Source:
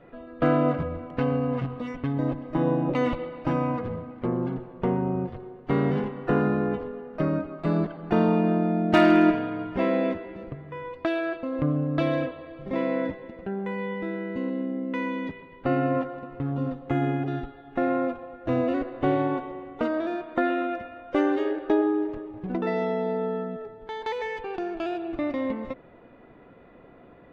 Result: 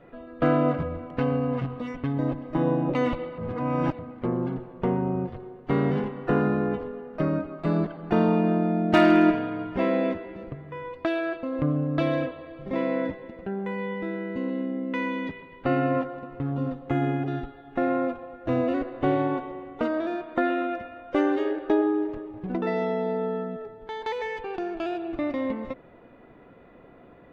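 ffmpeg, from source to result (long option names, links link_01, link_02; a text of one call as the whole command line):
ffmpeg -i in.wav -filter_complex "[0:a]asettb=1/sr,asplit=3[link_01][link_02][link_03];[link_01]atrim=end=14.494[link_04];[link_02]atrim=start=14.49:end=16.01,asetpts=PTS-STARTPTS,afade=type=in:duration=0.004:curve=qsin,afade=type=out:start_time=1.516:duration=0.004:curve=qsin,equalizer=frequency=3100:width=0.47:gain=3[link_05];[link_03]atrim=start=16.006[link_06];[link_04][link_05]acrossfade=duration=0.004:curve1=hsin:curve2=qsin[link_07];[link_07][link_06]acrossfade=duration=0.004:curve1=qsin:curve2=hsin,asplit=3[link_08][link_09][link_10];[link_08]atrim=end=3.382[link_11];[link_09]atrim=start=3.378:end=3.992,asetpts=PTS-STARTPTS,areverse[link_12];[link_10]atrim=start=3.988[link_13];[link_11][link_12]acrossfade=duration=0.004:curve1=hsin:curve2=hsin[link_14];[link_14][link_13]acrossfade=duration=0.004:curve1=hsin:curve2=hsin" out.wav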